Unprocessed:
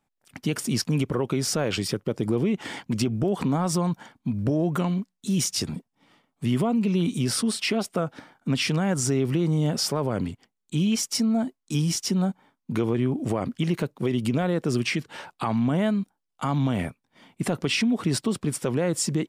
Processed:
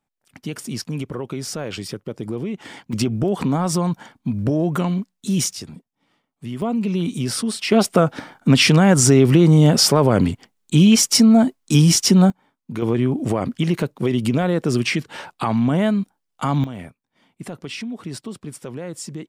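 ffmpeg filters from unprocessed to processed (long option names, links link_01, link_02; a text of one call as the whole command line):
ffmpeg -i in.wav -af "asetnsamples=nb_out_samples=441:pad=0,asendcmd='2.93 volume volume 4dB;5.53 volume volume -6dB;6.62 volume volume 1.5dB;7.72 volume volume 11dB;12.3 volume volume -1.5dB;12.82 volume volume 5dB;16.64 volume volume -7dB',volume=-3dB" out.wav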